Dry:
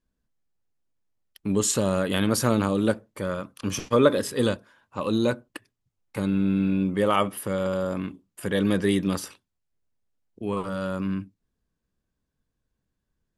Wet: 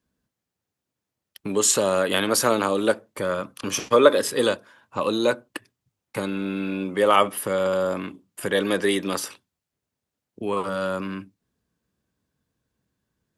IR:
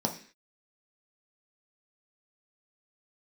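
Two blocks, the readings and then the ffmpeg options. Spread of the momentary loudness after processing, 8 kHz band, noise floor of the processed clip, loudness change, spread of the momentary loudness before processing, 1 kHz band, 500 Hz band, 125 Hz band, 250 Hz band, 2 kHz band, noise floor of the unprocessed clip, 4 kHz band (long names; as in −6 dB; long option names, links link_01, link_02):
15 LU, +5.5 dB, −85 dBFS, +2.5 dB, 13 LU, +5.5 dB, +4.0 dB, −7.5 dB, −3.0 dB, +5.5 dB, −81 dBFS, +5.5 dB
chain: -filter_complex "[0:a]highpass=86,acrossover=split=330[link_01][link_02];[link_01]acompressor=threshold=-40dB:ratio=10[link_03];[link_03][link_02]amix=inputs=2:normalize=0,volume=5.5dB"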